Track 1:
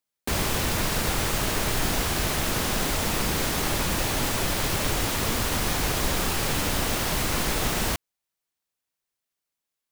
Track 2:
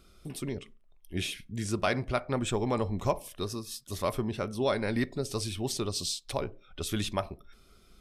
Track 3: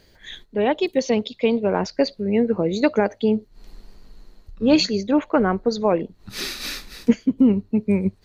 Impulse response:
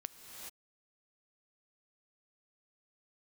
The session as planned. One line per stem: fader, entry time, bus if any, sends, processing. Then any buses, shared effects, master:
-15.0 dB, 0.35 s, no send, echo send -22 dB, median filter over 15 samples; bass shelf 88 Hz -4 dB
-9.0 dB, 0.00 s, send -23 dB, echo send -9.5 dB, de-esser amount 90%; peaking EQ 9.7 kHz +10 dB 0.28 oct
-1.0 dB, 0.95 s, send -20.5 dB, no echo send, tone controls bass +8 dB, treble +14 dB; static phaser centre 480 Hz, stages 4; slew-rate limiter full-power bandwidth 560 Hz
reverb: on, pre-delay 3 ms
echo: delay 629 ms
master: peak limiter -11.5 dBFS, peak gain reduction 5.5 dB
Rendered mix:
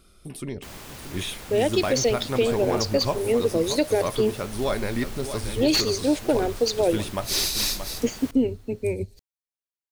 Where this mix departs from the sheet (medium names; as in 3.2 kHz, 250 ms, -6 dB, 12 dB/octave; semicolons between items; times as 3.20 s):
stem 1: missing median filter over 15 samples; stem 2 -9.0 dB -> +2.0 dB; reverb return -9.5 dB